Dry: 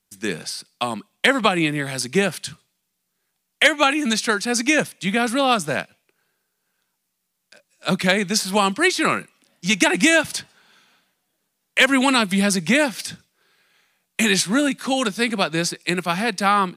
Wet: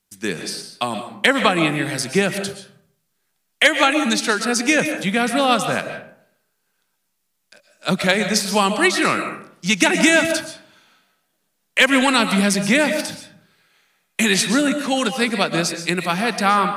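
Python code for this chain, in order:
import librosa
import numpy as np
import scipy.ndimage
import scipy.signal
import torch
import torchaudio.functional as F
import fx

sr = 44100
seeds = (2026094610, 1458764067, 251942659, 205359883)

y = fx.rev_freeverb(x, sr, rt60_s=0.62, hf_ratio=0.5, predelay_ms=90, drr_db=7.5)
y = y * 10.0 ** (1.0 / 20.0)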